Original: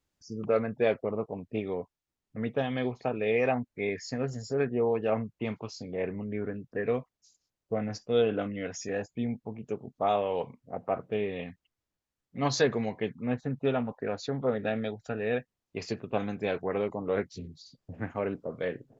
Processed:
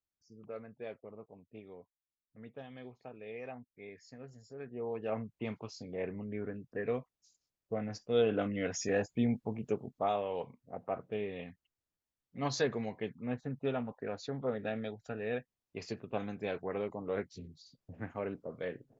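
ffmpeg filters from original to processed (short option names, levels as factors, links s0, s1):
-af "volume=1.19,afade=t=in:st=4.6:d=0.75:silence=0.237137,afade=t=in:st=8.03:d=0.76:silence=0.446684,afade=t=out:st=9.65:d=0.48:silence=0.398107"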